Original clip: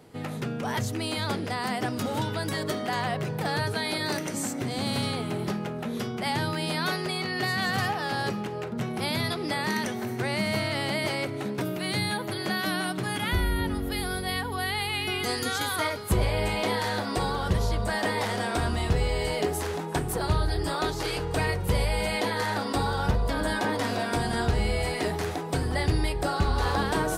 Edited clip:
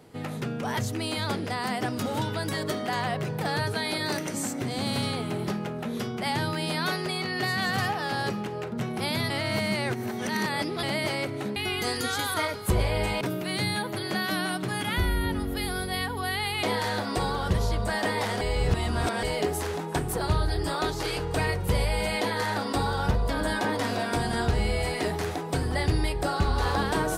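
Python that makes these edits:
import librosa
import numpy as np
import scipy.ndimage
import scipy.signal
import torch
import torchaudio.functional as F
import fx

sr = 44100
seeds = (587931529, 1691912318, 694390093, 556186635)

y = fx.edit(x, sr, fx.reverse_span(start_s=9.3, length_s=1.53),
    fx.move(start_s=14.98, length_s=1.65, to_s=11.56),
    fx.reverse_span(start_s=18.41, length_s=0.82), tone=tone)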